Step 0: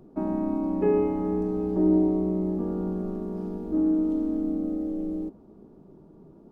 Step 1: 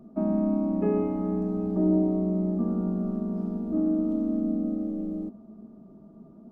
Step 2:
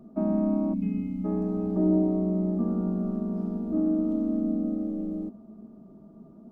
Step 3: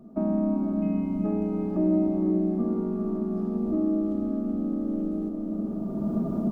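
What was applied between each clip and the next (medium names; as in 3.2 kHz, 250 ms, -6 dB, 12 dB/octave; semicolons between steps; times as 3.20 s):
small resonant body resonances 220/650/1200 Hz, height 16 dB, ringing for 80 ms; trim -5.5 dB
time-frequency box 0.74–1.25 s, 290–2100 Hz -24 dB
recorder AGC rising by 18 dB/s; echo that smears into a reverb 461 ms, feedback 45%, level -4 dB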